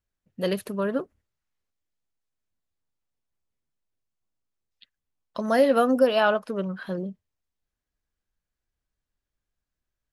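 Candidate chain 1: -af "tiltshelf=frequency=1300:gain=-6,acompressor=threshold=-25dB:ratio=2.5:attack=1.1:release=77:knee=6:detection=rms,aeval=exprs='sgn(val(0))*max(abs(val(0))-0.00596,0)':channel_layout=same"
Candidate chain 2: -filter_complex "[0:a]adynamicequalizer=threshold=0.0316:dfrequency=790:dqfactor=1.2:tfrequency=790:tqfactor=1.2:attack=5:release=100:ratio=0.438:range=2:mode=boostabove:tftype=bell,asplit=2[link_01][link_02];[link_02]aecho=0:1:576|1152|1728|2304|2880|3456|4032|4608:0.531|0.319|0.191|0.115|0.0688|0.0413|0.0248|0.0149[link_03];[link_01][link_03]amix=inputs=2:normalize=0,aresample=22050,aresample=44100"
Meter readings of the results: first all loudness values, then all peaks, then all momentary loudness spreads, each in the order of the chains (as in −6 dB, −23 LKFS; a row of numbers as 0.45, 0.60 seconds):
−33.0, −23.5 LKFS; −17.5, −6.0 dBFS; 12, 22 LU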